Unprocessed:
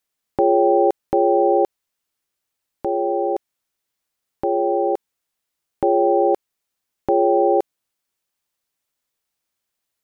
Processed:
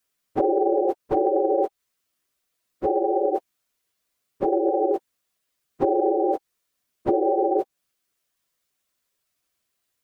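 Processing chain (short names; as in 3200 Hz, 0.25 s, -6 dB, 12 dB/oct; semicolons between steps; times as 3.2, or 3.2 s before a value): phase scrambler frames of 50 ms; compressor 6:1, threshold -20 dBFS, peak gain reduction 9.5 dB; Butterworth band-stop 850 Hz, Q 7.5; gain +2.5 dB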